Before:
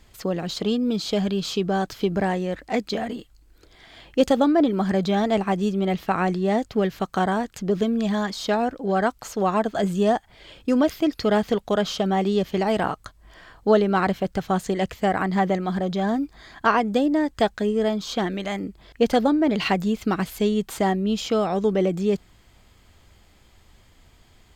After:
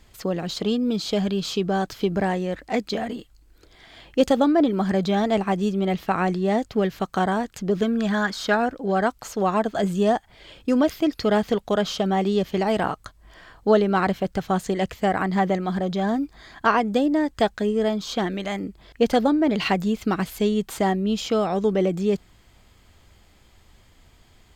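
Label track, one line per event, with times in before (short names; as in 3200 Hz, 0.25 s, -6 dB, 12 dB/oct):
7.820000	8.660000	bell 1500 Hz +10.5 dB 0.54 oct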